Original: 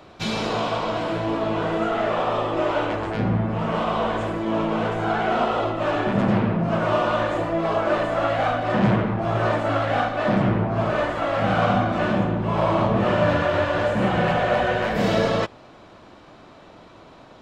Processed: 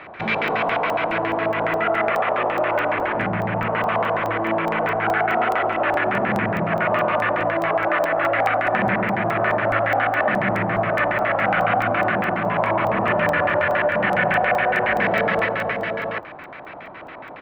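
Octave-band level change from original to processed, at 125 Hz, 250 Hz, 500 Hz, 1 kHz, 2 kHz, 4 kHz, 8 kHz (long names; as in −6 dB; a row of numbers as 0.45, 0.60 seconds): −5.0 dB, −3.5 dB, +1.0 dB, +3.5 dB, +7.5 dB, −2.5 dB, can't be measured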